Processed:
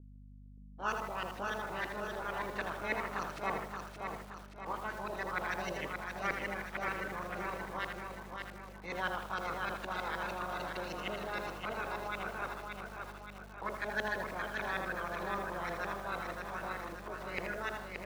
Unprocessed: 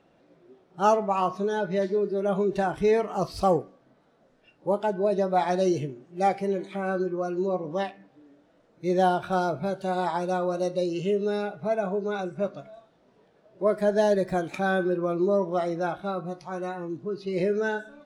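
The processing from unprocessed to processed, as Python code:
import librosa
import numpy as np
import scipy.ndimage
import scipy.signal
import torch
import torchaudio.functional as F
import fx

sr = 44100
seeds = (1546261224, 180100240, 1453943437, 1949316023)

p1 = fx.spec_clip(x, sr, under_db=27)
p2 = scipy.signal.sosfilt(scipy.signal.butter(4, 72.0, 'highpass', fs=sr, output='sos'), p1)
p3 = fx.over_compress(p2, sr, threshold_db=-31.0, ratio=-1.0)
p4 = p2 + F.gain(torch.from_numpy(p3), 0.0).numpy()
p5 = scipy.signal.lfilter([1.0, -0.9], [1.0], p4)
p6 = np.sign(p5) * np.maximum(np.abs(p5) - 10.0 ** (-46.5 / 20.0), 0.0)
p7 = fx.add_hum(p6, sr, base_hz=50, snr_db=15)
p8 = fx.filter_lfo_lowpass(p7, sr, shape='saw_up', hz=6.5, low_hz=450.0, high_hz=2000.0, q=2.2)
p9 = p8 + fx.echo_feedback(p8, sr, ms=575, feedback_pct=51, wet_db=-5.0, dry=0)
p10 = fx.echo_crushed(p9, sr, ms=80, feedback_pct=35, bits=8, wet_db=-6.5)
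y = F.gain(torch.from_numpy(p10), -1.5).numpy()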